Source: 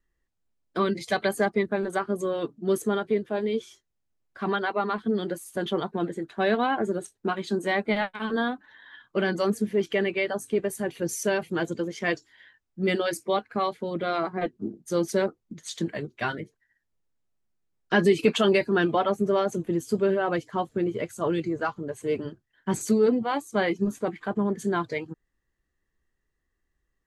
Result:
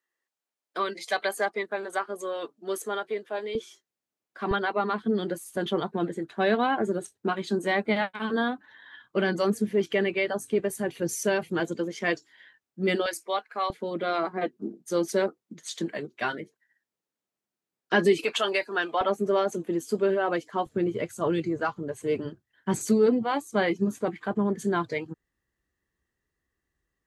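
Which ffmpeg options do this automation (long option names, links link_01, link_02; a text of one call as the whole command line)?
ffmpeg -i in.wav -af "asetnsamples=nb_out_samples=441:pad=0,asendcmd='3.55 highpass f 240;4.51 highpass f 70;11.6 highpass f 160;13.06 highpass f 650;13.7 highpass f 220;18.24 highpass f 640;19.01 highpass f 240;20.66 highpass f 56',highpass=550" out.wav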